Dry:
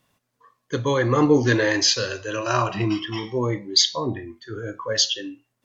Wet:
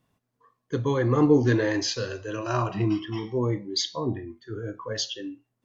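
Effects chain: tilt shelf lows +5 dB; band-stop 560 Hz, Q 12; trim -5.5 dB

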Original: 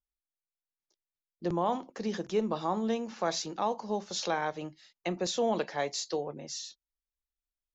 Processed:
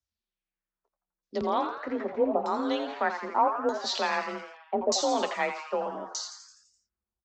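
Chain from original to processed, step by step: LFO low-pass saw down 0.76 Hz 490–5800 Hz; frequency shift +31 Hz; tape speed +7%; on a send: frequency-shifting echo 84 ms, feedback 57%, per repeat +150 Hz, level -9 dB; on the sum: trim +1 dB

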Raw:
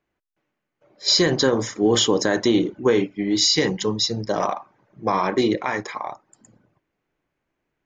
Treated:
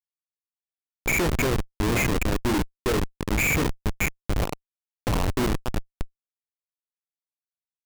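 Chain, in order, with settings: knee-point frequency compression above 1.8 kHz 4:1; Schmitt trigger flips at -16.5 dBFS

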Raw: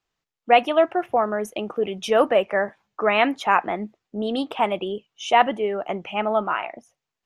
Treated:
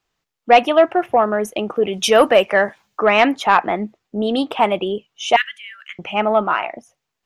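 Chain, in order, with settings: 1.93–3.00 s: treble shelf 2.7 kHz +10 dB; 5.36–5.99 s: elliptic high-pass 1.6 kHz, stop band 50 dB; saturation -6.5 dBFS, distortion -22 dB; trim +6 dB

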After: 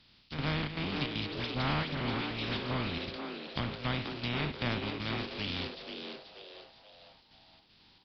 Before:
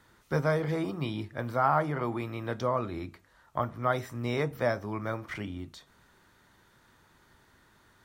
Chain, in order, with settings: spectral contrast reduction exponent 0.3; low-pass that closes with the level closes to 2.1 kHz, closed at -27.5 dBFS; high-order bell 840 Hz -11.5 dB 2.8 oct; in parallel at -2 dB: compression, threshold -36 dBFS, peak gain reduction 7 dB; on the sum: transient shaper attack -1 dB, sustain +7 dB; square tremolo 2.6 Hz, depth 60%, duty 75%; 1.26–2.95 s: phase dispersion highs, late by 74 ms, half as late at 2.2 kHz; on a send: frequency-shifting echo 483 ms, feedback 44%, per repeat +140 Hz, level -7 dB; on the sum: resampled via 11.025 kHz

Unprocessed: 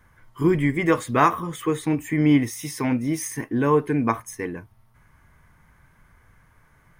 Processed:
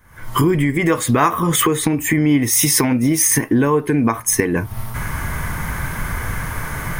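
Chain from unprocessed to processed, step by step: recorder AGC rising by 78 dB/s; treble shelf 7.6 kHz +8 dB; trim +2 dB

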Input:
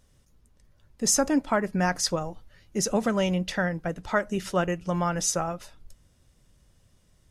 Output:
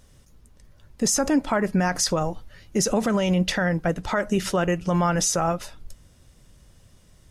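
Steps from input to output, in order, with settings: peak limiter -21 dBFS, peak gain reduction 10.5 dB; trim +8 dB

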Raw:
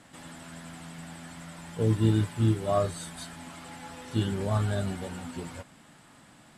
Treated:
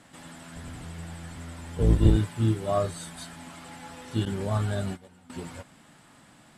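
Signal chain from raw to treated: 0.55–2.17 s: octave divider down 1 oct, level +4 dB; 4.25–5.30 s: gate -32 dBFS, range -17 dB

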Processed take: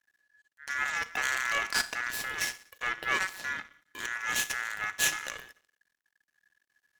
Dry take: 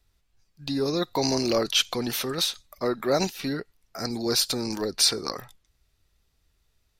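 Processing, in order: Schroeder reverb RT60 0.59 s, combs from 26 ms, DRR 13.5 dB; half-wave rectifier; ring modulator 1.7 kHz

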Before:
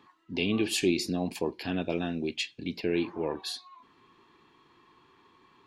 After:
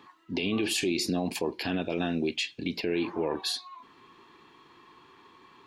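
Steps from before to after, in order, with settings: bass shelf 200 Hz -5 dB; peak limiter -25.5 dBFS, peak gain reduction 9.5 dB; trim +6 dB

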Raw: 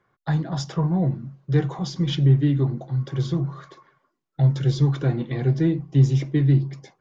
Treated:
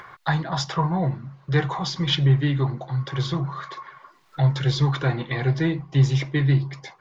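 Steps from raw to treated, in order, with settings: graphic EQ 250/1000/2000/4000 Hz -6/+9/+7/+7 dB; upward compressor, threshold -29 dBFS

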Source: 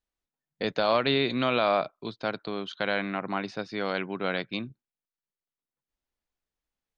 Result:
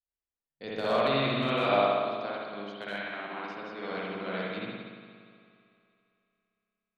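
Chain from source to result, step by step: 1.60–3.92 s: high-pass 190 Hz 12 dB/octave; hard clipper -13.5 dBFS, distortion -31 dB; multi-head delay 91 ms, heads second and third, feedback 61%, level -19 dB; spring tank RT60 2.2 s, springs 59 ms, chirp 25 ms, DRR -6.5 dB; upward expansion 1.5:1, over -32 dBFS; trim -7 dB

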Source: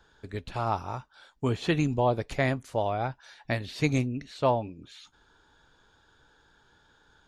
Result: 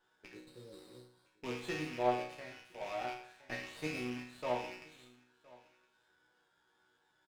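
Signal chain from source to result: rattle on loud lows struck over -42 dBFS, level -23 dBFS; 0.72–1.52 s: dynamic bell 3.8 kHz, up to +6 dB, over -50 dBFS, Q 1; 0.35–1.28 s: spectral replace 560–3600 Hz after; on a send: delay 1015 ms -23 dB; 2.24–2.81 s: on the sum: compression 1.5:1, threshold -46 dBFS, peak gain reduction 9 dB; high-pass 260 Hz 12 dB/octave; chord resonator B2 major, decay 0.57 s; sliding maximum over 5 samples; trim +7 dB

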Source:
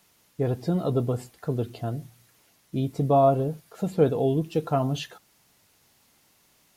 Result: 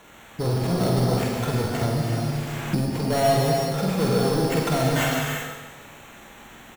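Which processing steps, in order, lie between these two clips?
in parallel at +2.5 dB: compressor with a negative ratio -32 dBFS, ratio -1; on the sum: sample-rate reducer 4.9 kHz, jitter 0%; saturation -22 dBFS, distortion -10 dB; doubling 47 ms -5 dB; on a send: feedback delay 149 ms, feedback 48%, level -10 dB; on the sum: gated-style reverb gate 410 ms flat, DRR -1.5 dB; 1.81–2.88 s: three bands compressed up and down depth 100%

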